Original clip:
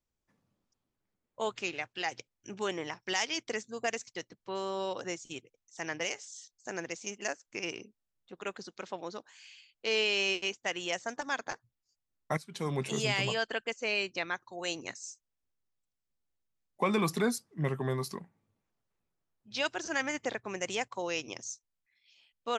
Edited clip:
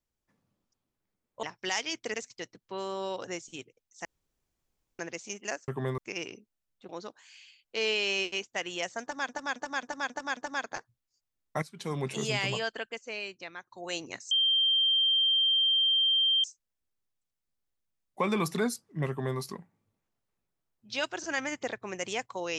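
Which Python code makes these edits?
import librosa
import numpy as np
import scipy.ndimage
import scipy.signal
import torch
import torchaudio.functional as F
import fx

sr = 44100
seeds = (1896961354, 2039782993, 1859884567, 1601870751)

y = fx.edit(x, sr, fx.cut(start_s=1.43, length_s=1.44),
    fx.cut(start_s=3.58, length_s=0.33),
    fx.room_tone_fill(start_s=5.82, length_s=0.94),
    fx.cut(start_s=8.36, length_s=0.63),
    fx.repeat(start_s=11.12, length_s=0.27, count=6),
    fx.fade_out_to(start_s=13.3, length_s=1.16, curve='qua', floor_db=-9.0),
    fx.insert_tone(at_s=15.06, length_s=2.13, hz=3160.0, db=-22.0),
    fx.duplicate(start_s=17.71, length_s=0.3, to_s=7.45), tone=tone)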